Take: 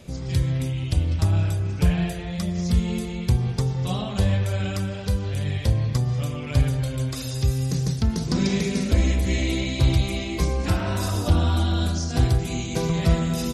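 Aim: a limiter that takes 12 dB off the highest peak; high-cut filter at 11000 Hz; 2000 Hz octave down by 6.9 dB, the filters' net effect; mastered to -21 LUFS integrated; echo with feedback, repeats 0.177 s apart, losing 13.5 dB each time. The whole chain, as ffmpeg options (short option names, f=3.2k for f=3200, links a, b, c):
-af "lowpass=11k,equalizer=f=2k:t=o:g=-9,alimiter=limit=-20dB:level=0:latency=1,aecho=1:1:177|354:0.211|0.0444,volume=7.5dB"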